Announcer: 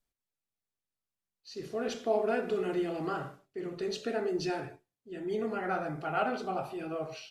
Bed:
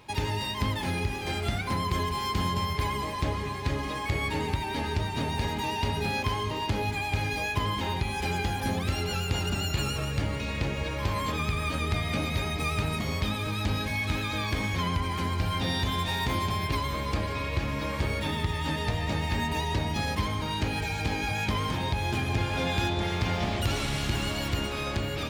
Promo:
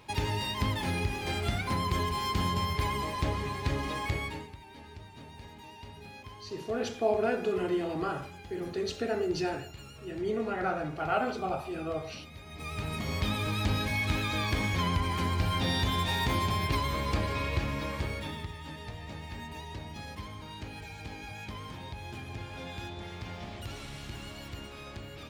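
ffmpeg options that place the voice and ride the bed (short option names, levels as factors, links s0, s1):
-filter_complex "[0:a]adelay=4950,volume=1.19[s0];[1:a]volume=6.68,afade=t=out:st=4.03:d=0.46:silence=0.141254,afade=t=in:st=12.45:d=0.91:silence=0.125893,afade=t=out:st=17.44:d=1.13:silence=0.237137[s1];[s0][s1]amix=inputs=2:normalize=0"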